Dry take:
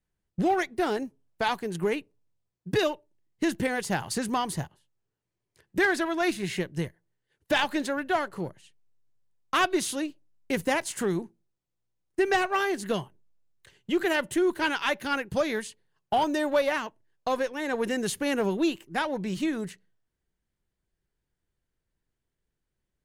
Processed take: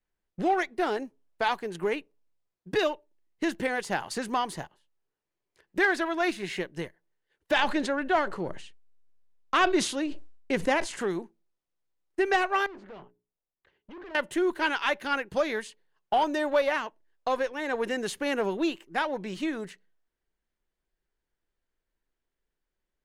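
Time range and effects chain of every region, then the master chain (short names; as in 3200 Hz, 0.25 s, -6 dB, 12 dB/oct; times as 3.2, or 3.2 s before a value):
7.57–11.01 LPF 9300 Hz + low shelf 320 Hz +6 dB + sustainer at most 83 dB/s
12.66–14.15 notches 60/120/180/240/300/360/420 Hz + tube stage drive 39 dB, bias 0.65 + tape spacing loss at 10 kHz 32 dB
whole clip: LPF 3600 Hz 6 dB/oct; bell 110 Hz -14.5 dB 1.9 oct; gain +1.5 dB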